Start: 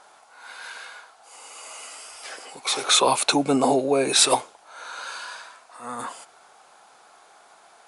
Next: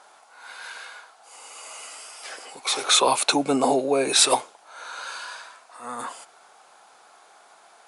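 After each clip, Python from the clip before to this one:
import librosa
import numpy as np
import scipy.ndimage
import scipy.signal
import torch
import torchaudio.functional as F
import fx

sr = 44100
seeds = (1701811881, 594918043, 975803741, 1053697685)

y = fx.highpass(x, sr, hz=200.0, slope=6)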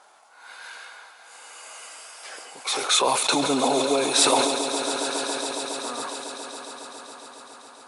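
y = fx.echo_swell(x, sr, ms=138, loudest=5, wet_db=-13.5)
y = fx.sustainer(y, sr, db_per_s=37.0)
y = y * librosa.db_to_amplitude(-2.5)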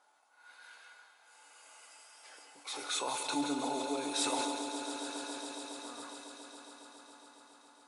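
y = fx.comb_fb(x, sr, f0_hz=290.0, decay_s=0.34, harmonics='odd', damping=0.0, mix_pct=80)
y = y + 10.0 ** (-9.5 / 20.0) * np.pad(y, (int(183 * sr / 1000.0), 0))[:len(y)]
y = y * librosa.db_to_amplitude(-3.0)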